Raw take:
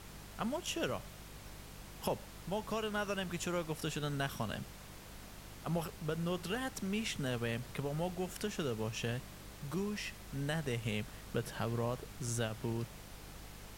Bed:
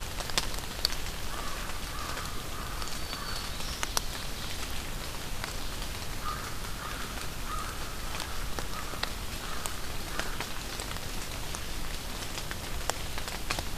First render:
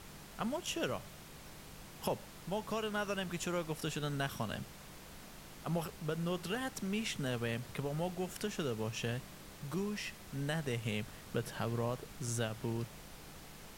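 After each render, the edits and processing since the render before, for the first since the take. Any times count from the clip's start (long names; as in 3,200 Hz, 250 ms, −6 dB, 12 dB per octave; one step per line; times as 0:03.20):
hum removal 50 Hz, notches 2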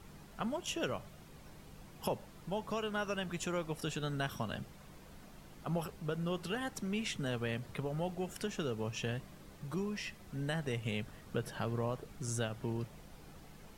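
broadband denoise 8 dB, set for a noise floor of −53 dBFS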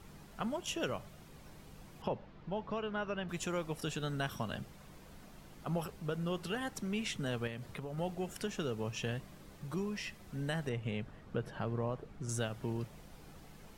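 0:02.02–0:03.29: high-frequency loss of the air 240 metres
0:07.47–0:07.98: downward compressor 3 to 1, threshold −39 dBFS
0:10.69–0:12.29: low-pass filter 1,900 Hz 6 dB per octave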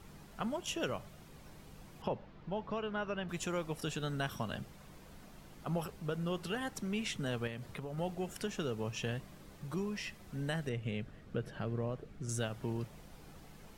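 0:10.56–0:12.43: parametric band 930 Hz −7 dB 0.73 octaves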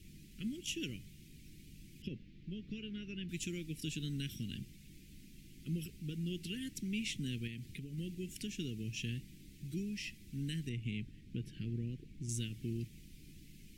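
Chebyshev band-stop filter 320–2,300 Hz, order 3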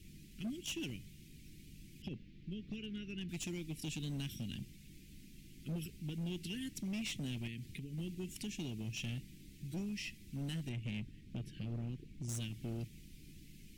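gain into a clipping stage and back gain 36 dB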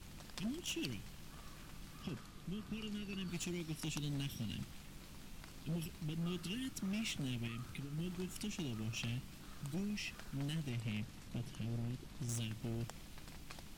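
mix in bed −21 dB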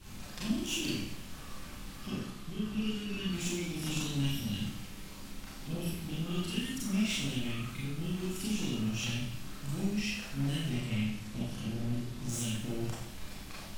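four-comb reverb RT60 0.73 s, combs from 29 ms, DRR −7.5 dB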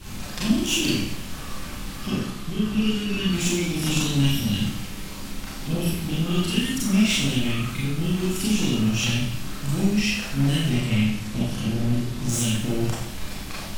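level +11.5 dB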